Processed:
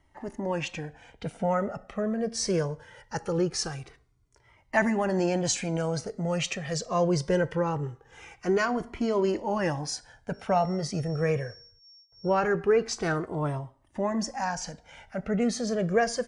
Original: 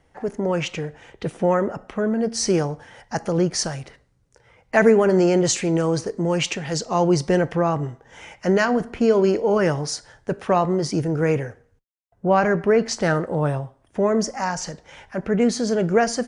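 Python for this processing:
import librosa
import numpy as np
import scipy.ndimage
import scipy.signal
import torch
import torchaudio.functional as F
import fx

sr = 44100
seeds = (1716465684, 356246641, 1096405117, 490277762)

y = fx.dmg_tone(x, sr, hz=5500.0, level_db=-46.0, at=(10.33, 12.4), fade=0.02)
y = fx.comb_cascade(y, sr, direction='falling', hz=0.22)
y = F.gain(torch.from_numpy(y), -1.5).numpy()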